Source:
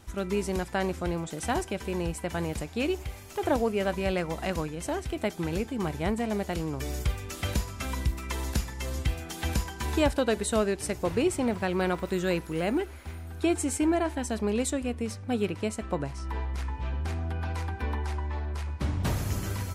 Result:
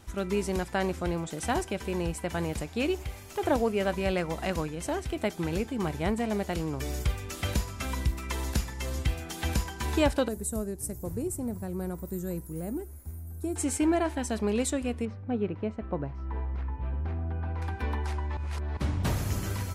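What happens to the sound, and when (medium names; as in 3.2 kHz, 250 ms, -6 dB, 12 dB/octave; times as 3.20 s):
10.28–13.56 s: FFT filter 120 Hz 0 dB, 1.8 kHz -19 dB, 3 kHz -27 dB, 7.4 kHz -3 dB, 14 kHz +10 dB
15.05–17.62 s: tape spacing loss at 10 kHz 43 dB
18.37–18.77 s: reverse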